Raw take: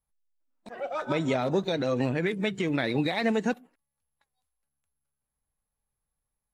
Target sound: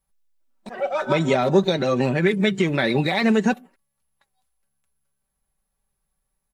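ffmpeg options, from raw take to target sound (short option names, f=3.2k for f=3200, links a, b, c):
-af "aecho=1:1:5.2:0.52,volume=6.5dB"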